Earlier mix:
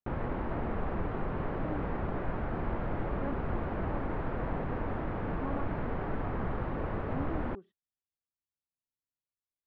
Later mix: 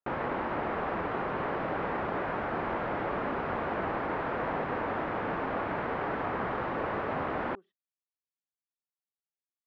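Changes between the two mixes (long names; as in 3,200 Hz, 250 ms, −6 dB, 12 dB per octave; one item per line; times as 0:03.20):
background +9.0 dB
master: add high-pass filter 670 Hz 6 dB per octave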